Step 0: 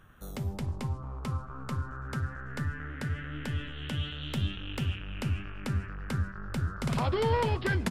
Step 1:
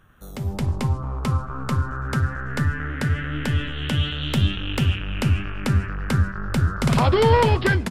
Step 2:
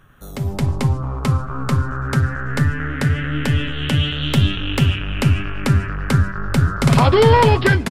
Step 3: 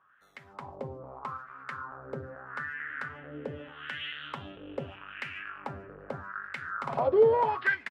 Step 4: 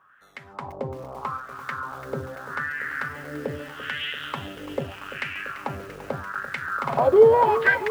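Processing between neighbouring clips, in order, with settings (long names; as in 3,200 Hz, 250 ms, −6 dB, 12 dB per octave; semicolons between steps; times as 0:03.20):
automatic gain control gain up to 10 dB; level +1 dB
comb filter 7.2 ms, depth 30%; level +4.5 dB
LFO wah 0.8 Hz 480–2,000 Hz, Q 3.5; level −4.5 dB
feedback echo at a low word length 340 ms, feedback 80%, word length 8 bits, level −13 dB; level +7.5 dB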